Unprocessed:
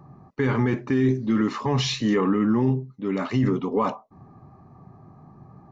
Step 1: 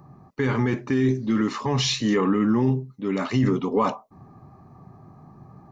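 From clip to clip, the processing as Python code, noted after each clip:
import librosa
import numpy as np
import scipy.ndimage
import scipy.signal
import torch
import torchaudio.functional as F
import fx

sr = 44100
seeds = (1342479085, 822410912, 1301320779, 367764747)

y = fx.rider(x, sr, range_db=10, speed_s=2.0)
y = fx.high_shelf(y, sr, hz=4400.0, db=8.0)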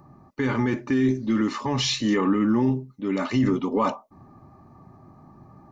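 y = x + 0.33 * np.pad(x, (int(3.4 * sr / 1000.0), 0))[:len(x)]
y = F.gain(torch.from_numpy(y), -1.0).numpy()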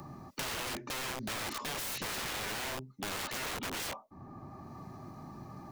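y = (np.mod(10.0 ** (25.5 / 20.0) * x + 1.0, 2.0) - 1.0) / 10.0 ** (25.5 / 20.0)
y = fx.band_squash(y, sr, depth_pct=70)
y = F.gain(torch.from_numpy(y), -7.5).numpy()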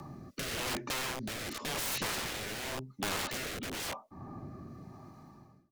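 y = fx.fade_out_tail(x, sr, length_s=1.16)
y = fx.rotary(y, sr, hz=0.9)
y = F.gain(torch.from_numpy(y), 4.0).numpy()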